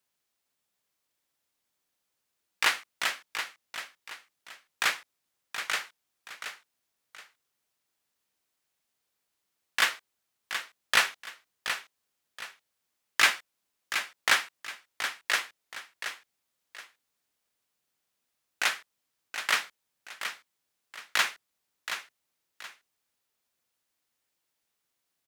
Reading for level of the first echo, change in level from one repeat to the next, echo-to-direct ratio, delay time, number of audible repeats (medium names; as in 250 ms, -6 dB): -9.0 dB, -10.0 dB, -8.5 dB, 725 ms, 2